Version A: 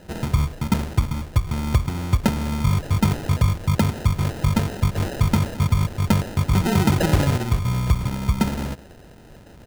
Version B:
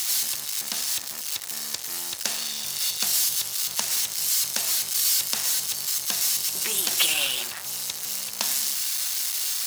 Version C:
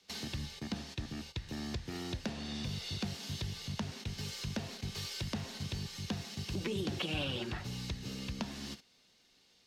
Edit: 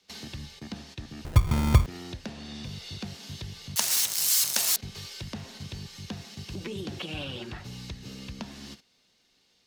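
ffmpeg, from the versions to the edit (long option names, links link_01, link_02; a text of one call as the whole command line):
ffmpeg -i take0.wav -i take1.wav -i take2.wav -filter_complex "[2:a]asplit=3[link_01][link_02][link_03];[link_01]atrim=end=1.252[link_04];[0:a]atrim=start=1.248:end=1.862[link_05];[link_02]atrim=start=1.858:end=3.762[link_06];[1:a]atrim=start=3.758:end=4.762[link_07];[link_03]atrim=start=4.758[link_08];[link_04][link_05]acrossfade=duration=0.004:curve1=hsin:curve2=hsin[link_09];[link_09][link_06]acrossfade=duration=0.004:curve1=hsin:curve2=hsin[link_10];[link_10][link_07]acrossfade=duration=0.004:curve1=hsin:curve2=hsin[link_11];[link_11][link_08]acrossfade=duration=0.004:curve1=hsin:curve2=hsin" out.wav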